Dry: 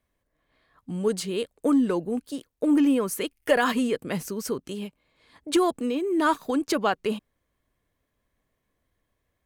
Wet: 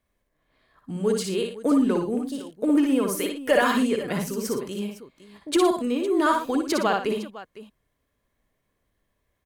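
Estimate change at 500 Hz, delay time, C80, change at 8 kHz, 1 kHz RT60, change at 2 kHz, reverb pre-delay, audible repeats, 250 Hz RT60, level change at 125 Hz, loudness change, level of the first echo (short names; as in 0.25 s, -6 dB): +2.0 dB, 58 ms, none, +2.0 dB, none, +1.5 dB, none, 3, none, +2.5 dB, +1.5 dB, -5.0 dB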